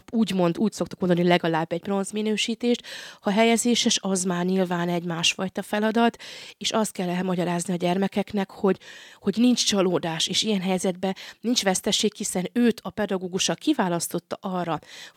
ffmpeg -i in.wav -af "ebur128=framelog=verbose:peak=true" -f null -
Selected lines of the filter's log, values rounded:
Integrated loudness:
  I:         -24.1 LUFS
  Threshold: -34.2 LUFS
Loudness range:
  LRA:         2.4 LU
  Threshold: -44.1 LUFS
  LRA low:   -25.4 LUFS
  LRA high:  -23.0 LUFS
True peak:
  Peak:       -5.6 dBFS